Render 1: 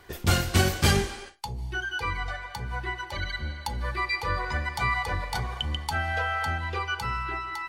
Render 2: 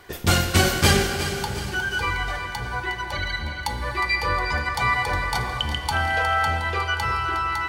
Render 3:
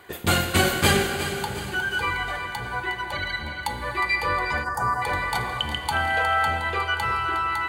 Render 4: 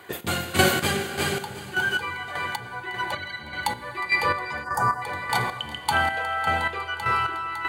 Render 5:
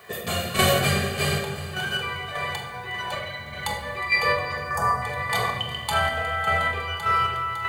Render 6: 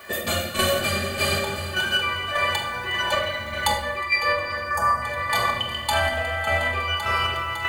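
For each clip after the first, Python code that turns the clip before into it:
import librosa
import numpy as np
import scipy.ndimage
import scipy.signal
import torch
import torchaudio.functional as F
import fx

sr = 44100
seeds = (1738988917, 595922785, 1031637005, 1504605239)

y1 = fx.low_shelf(x, sr, hz=140.0, db=-4.5)
y1 = fx.echo_feedback(y1, sr, ms=361, feedback_pct=51, wet_db=-11)
y1 = fx.rev_plate(y1, sr, seeds[0], rt60_s=4.1, hf_ratio=0.85, predelay_ms=0, drr_db=7.5)
y1 = y1 * 10.0 ** (5.0 / 20.0)
y2 = fx.spec_box(y1, sr, start_s=4.64, length_s=0.38, low_hz=1900.0, high_hz=4700.0, gain_db=-23)
y2 = fx.highpass(y2, sr, hz=130.0, slope=6)
y2 = fx.peak_eq(y2, sr, hz=5500.0, db=-14.0, octaves=0.3)
y3 = scipy.signal.sosfilt(scipy.signal.butter(4, 89.0, 'highpass', fs=sr, output='sos'), y2)
y3 = fx.chopper(y3, sr, hz=1.7, depth_pct=60, duty_pct=35)
y3 = y3 * 10.0 ** (2.5 / 20.0)
y4 = y3 + 0.67 * np.pad(y3, (int(1.7 * sr / 1000.0), 0))[:len(y3)]
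y4 = fx.dmg_noise_colour(y4, sr, seeds[1], colour='white', level_db=-62.0)
y4 = fx.room_shoebox(y4, sr, seeds[2], volume_m3=790.0, walls='mixed', distance_m=1.5)
y4 = y4 * 10.0 ** (-3.0 / 20.0)
y5 = y4 + 0.72 * np.pad(y4, (int(3.4 * sr / 1000.0), 0))[:len(y4)]
y5 = fx.rider(y5, sr, range_db=5, speed_s=0.5)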